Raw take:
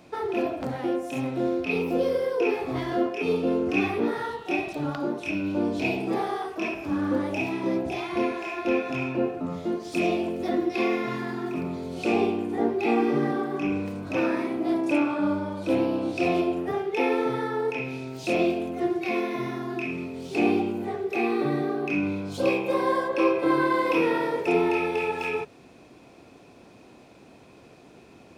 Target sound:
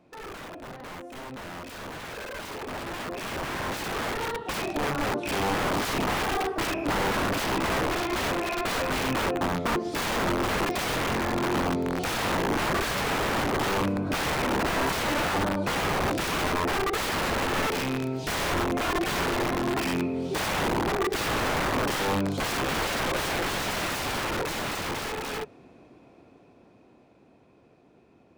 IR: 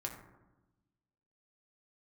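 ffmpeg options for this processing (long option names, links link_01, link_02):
-af "aeval=exprs='(mod(18.8*val(0)+1,2)-1)/18.8':channel_layout=same,dynaudnorm=framelen=240:gausssize=31:maxgain=14dB,highshelf=frequency=2800:gain=-11.5,volume=-7.5dB"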